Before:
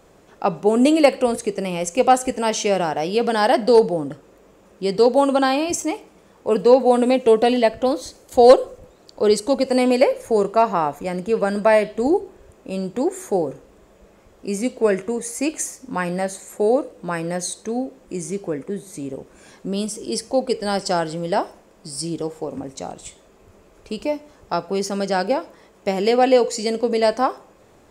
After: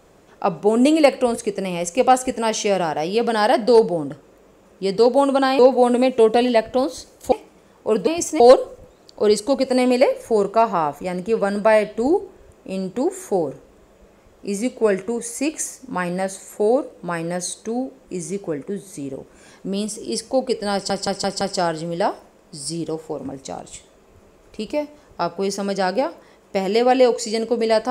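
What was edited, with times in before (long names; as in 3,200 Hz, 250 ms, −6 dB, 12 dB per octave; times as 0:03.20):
0:05.59–0:05.92: swap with 0:06.67–0:08.40
0:20.73: stutter 0.17 s, 5 plays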